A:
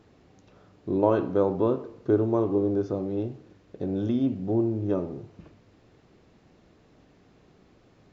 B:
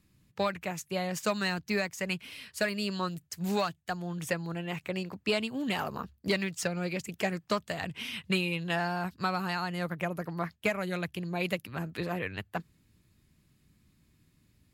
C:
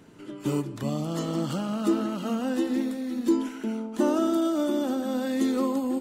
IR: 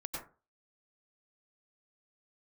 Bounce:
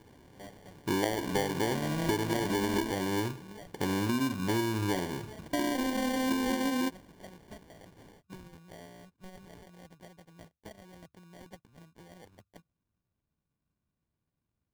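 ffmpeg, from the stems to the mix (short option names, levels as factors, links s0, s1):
-filter_complex "[0:a]volume=1.12[s0];[1:a]volume=0.112[s1];[2:a]adelay=900,volume=0.944,asplit=3[s2][s3][s4];[s2]atrim=end=2.91,asetpts=PTS-STARTPTS,afade=t=out:st=2.906:d=0.004:c=hsin[s5];[s3]atrim=start=2.91:end=5.53,asetpts=PTS-STARTPTS,volume=0[s6];[s4]atrim=start=5.53,asetpts=PTS-STARTPTS,afade=t=in:d=0.004:c=hsin[s7];[s5][s6][s7]concat=n=3:v=0:a=1[s8];[s0][s1][s8]amix=inputs=3:normalize=0,acrusher=samples=34:mix=1:aa=0.000001,acompressor=threshold=0.0501:ratio=10"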